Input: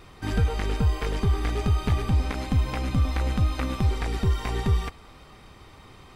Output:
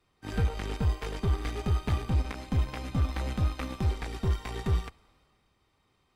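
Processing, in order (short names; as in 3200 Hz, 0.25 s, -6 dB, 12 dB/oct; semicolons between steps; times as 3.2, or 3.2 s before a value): added harmonics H 7 -23 dB, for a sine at -13 dBFS; three-band expander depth 40%; gain -5 dB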